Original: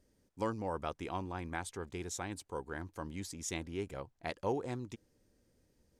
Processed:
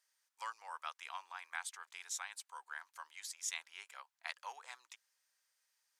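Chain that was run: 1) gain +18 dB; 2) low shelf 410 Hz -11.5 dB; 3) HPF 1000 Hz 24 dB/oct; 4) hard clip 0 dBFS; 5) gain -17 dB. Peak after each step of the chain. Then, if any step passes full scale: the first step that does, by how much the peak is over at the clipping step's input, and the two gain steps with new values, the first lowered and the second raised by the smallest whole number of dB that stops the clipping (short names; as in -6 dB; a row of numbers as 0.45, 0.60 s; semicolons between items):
-4.5, -4.5, -6.0, -6.0, -23.0 dBFS; no overload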